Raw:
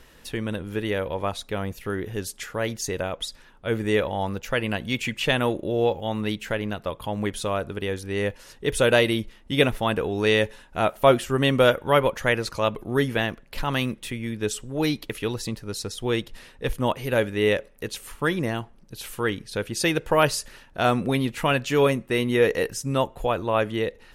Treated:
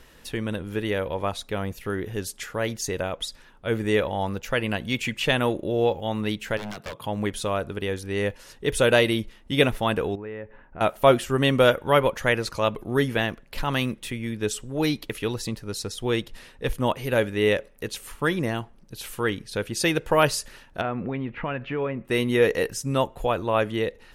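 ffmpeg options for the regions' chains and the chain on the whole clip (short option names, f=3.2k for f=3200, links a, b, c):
-filter_complex "[0:a]asettb=1/sr,asplit=3[a][b][c];[a]atrim=end=6.574[d];[b]atrim=start=6.57:end=7.06,asetpts=PTS-STARTPTS,afade=t=in:d=0.004:c=qsin,afade=t=out:st=0.486:d=0.004:c=qsin,highpass=f=110:w=0.5412,highpass=f=110:w=1.3066,aeval=exprs='0.0398*(abs(mod(val(0)/0.0398+3,4)-2)-1)':c=same[e];[c]atrim=start=7.056[f];[d][e]acrossfade=d=0.004:c1=hsin:c2=qsin[g];[g][f]acrossfade=d=0.004:c1=qsin:c2=hsin,asettb=1/sr,asplit=3[h][i][j];[h]atrim=end=10.154[k];[i]atrim=start=10.15:end=10.81,asetpts=PTS-STARTPTS,afade=t=in:d=0.004:c=qsin,afade=t=out:st=0.656:d=0.004:c=qsin,lowpass=f=2.2k:w=0.5412,lowpass=f=2.2k:w=1.3066,aemphasis=mode=reproduction:type=75kf,acompressor=threshold=-39dB:ratio=2.5:attack=3.2:release=140:knee=1:detection=peak[l];[j]atrim=start=10.806[m];[k][l]acrossfade=d=0.004:c1=hsin:c2=qsin[n];[n][m]acrossfade=d=0.004:c1=qsin:c2=hsin,asettb=1/sr,asplit=3[o][p][q];[o]atrim=end=20.814[r];[p]atrim=start=20.81:end=22.05,asetpts=PTS-STARTPTS,afade=t=in:d=0.004:c=qsin,afade=t=out:st=1.236:d=0.004:c=qsin,lowpass=f=2.4k:w=0.5412,lowpass=f=2.4k:w=1.3066,acompressor=threshold=-27dB:ratio=2.5:attack=3.2:release=140:knee=1:detection=peak[s];[q]atrim=start=22.046[t];[r][s]acrossfade=d=0.004:c1=hsin:c2=qsin[u];[u][t]acrossfade=d=0.004:c1=qsin:c2=hsin"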